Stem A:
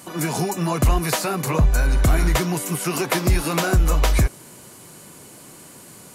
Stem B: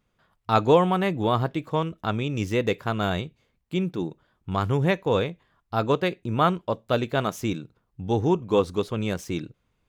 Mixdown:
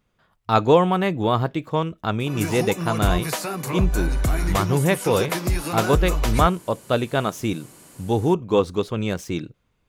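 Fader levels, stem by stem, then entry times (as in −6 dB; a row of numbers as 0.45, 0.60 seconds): −4.5, +2.5 decibels; 2.20, 0.00 seconds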